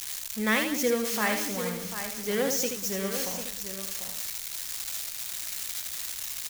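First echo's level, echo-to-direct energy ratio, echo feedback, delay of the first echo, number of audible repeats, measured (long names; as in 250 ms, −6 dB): −6.0 dB, −3.5 dB, repeats not evenly spaced, 78 ms, 5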